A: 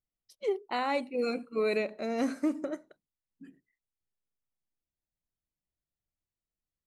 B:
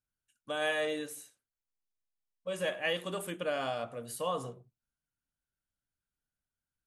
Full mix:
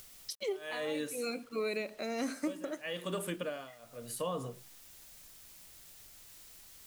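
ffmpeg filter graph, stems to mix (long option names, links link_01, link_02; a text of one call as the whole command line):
ffmpeg -i stem1.wav -i stem2.wav -filter_complex "[0:a]lowshelf=frequency=360:gain=-5.5,acompressor=mode=upward:threshold=-33dB:ratio=2.5,highshelf=frequency=2400:gain=9,volume=-2dB[link_01];[1:a]bandreject=frequency=780:width=12,tremolo=f=0.93:d=0.94,volume=3dB,asplit=2[link_02][link_03];[link_03]apad=whole_len=302797[link_04];[link_01][link_04]sidechaincompress=threshold=-45dB:ratio=8:attack=16:release=149[link_05];[link_05][link_02]amix=inputs=2:normalize=0,acrossover=split=390[link_06][link_07];[link_07]acompressor=threshold=-36dB:ratio=6[link_08];[link_06][link_08]amix=inputs=2:normalize=0,acrusher=bits=9:mix=0:aa=0.000001" out.wav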